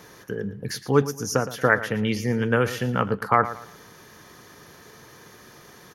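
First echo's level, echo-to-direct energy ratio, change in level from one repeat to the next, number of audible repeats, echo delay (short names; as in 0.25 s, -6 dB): -14.0 dB, -13.5 dB, -10.5 dB, 3, 0.114 s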